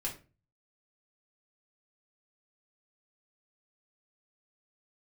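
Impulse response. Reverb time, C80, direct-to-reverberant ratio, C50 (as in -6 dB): 0.35 s, 16.0 dB, -3.5 dB, 10.0 dB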